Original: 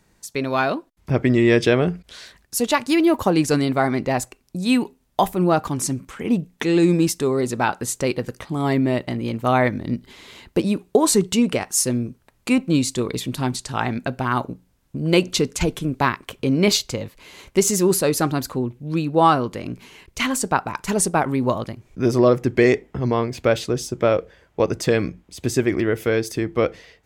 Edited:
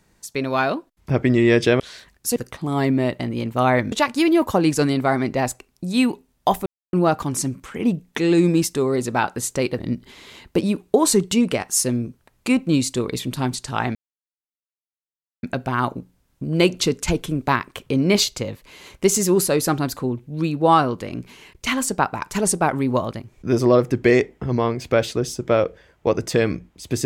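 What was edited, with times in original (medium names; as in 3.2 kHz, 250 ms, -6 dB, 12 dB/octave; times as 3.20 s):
1.80–2.08 s: delete
5.38 s: insert silence 0.27 s
8.24–9.80 s: move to 2.64 s
13.96 s: insert silence 1.48 s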